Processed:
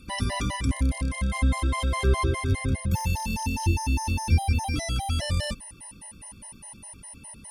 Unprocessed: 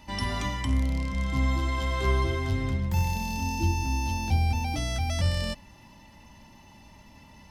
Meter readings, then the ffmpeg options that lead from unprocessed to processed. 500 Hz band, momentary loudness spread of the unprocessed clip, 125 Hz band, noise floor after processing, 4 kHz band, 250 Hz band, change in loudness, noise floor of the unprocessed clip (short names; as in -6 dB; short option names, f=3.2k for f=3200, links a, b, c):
+1.5 dB, 4 LU, +1.5 dB, -49 dBFS, +1.5 dB, +1.0 dB, +1.5 dB, -52 dBFS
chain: -af "aeval=exprs='val(0)+0.00631*sin(2*PI*9400*n/s)':c=same,afftfilt=real='re*gt(sin(2*PI*4.9*pts/sr)*(1-2*mod(floor(b*sr/1024/540),2)),0)':imag='im*gt(sin(2*PI*4.9*pts/sr)*(1-2*mod(floor(b*sr/1024/540),2)),0)':win_size=1024:overlap=0.75,volume=4.5dB"